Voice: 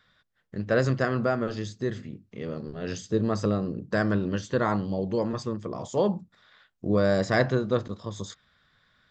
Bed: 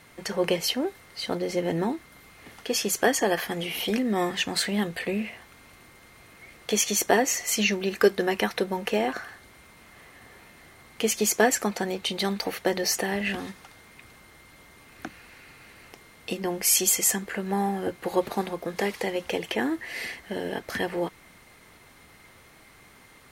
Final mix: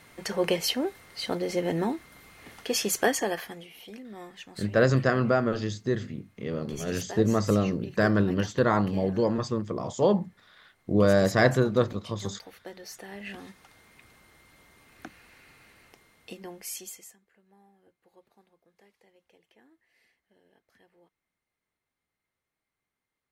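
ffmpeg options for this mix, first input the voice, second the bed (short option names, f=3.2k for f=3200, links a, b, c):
-filter_complex "[0:a]adelay=4050,volume=2dB[a];[1:a]volume=11dB,afade=t=out:st=2.98:d=0.7:silence=0.141254,afade=t=in:st=12.97:d=0.8:silence=0.251189,afade=t=out:st=15.55:d=1.61:silence=0.0375837[b];[a][b]amix=inputs=2:normalize=0"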